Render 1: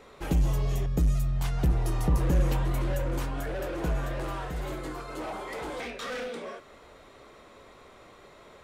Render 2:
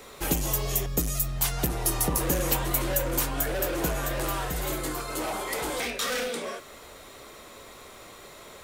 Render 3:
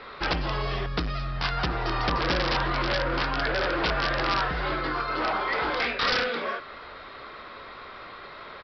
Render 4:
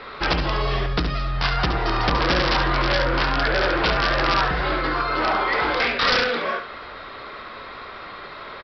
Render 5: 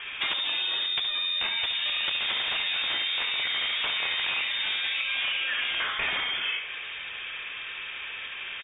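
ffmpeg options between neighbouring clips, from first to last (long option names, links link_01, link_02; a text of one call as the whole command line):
ffmpeg -i in.wav -filter_complex "[0:a]aemphasis=mode=production:type=75fm,acrossover=split=240|5400[link_01][link_02][link_03];[link_01]acompressor=threshold=-35dB:ratio=6[link_04];[link_04][link_02][link_03]amix=inputs=3:normalize=0,volume=4.5dB" out.wav
ffmpeg -i in.wav -af "equalizer=frequency=1400:width=1.1:gain=10.5,aresample=11025,aeval=exprs='(mod(7.5*val(0)+1,2)-1)/7.5':channel_layout=same,aresample=44100" out.wav
ffmpeg -i in.wav -af "aecho=1:1:70:0.376,volume=5dB" out.wav
ffmpeg -i in.wav -af "lowpass=frequency=3100:width_type=q:width=0.5098,lowpass=frequency=3100:width_type=q:width=0.6013,lowpass=frequency=3100:width_type=q:width=0.9,lowpass=frequency=3100:width_type=q:width=2.563,afreqshift=-3700,acompressor=threshold=-26dB:ratio=6" out.wav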